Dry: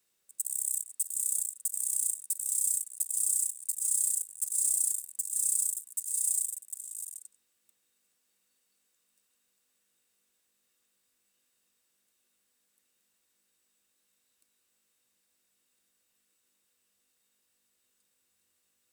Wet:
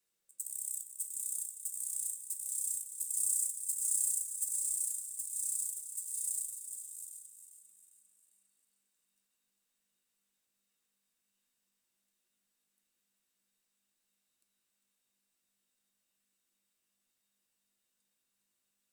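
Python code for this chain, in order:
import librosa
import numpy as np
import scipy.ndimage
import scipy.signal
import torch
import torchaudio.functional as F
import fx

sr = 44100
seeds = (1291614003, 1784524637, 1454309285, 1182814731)

y = fx.bass_treble(x, sr, bass_db=4, treble_db=4, at=(3.02, 4.56))
y = fx.echo_feedback(y, sr, ms=401, feedback_pct=44, wet_db=-10)
y = fx.room_shoebox(y, sr, seeds[0], volume_m3=150.0, walls='furnished', distance_m=0.8)
y = F.gain(torch.from_numpy(y), -8.0).numpy()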